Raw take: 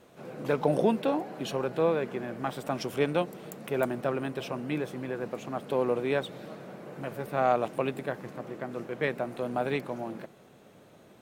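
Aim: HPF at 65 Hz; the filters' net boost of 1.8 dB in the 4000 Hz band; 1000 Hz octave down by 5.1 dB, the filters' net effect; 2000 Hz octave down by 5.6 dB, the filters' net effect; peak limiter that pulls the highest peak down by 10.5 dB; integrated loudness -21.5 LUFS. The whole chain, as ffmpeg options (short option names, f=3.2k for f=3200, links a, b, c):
-af "highpass=65,equalizer=f=1k:t=o:g=-6.5,equalizer=f=2k:t=o:g=-6.5,equalizer=f=4k:t=o:g=5,volume=14dB,alimiter=limit=-9dB:level=0:latency=1"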